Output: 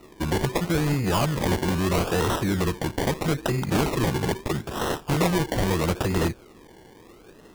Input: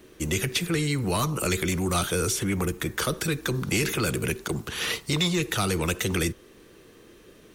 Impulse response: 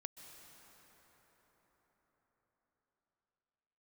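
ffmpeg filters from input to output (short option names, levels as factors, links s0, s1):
-af "acrusher=samples=27:mix=1:aa=0.000001:lfo=1:lforange=16.2:lforate=0.77,volume=1.33"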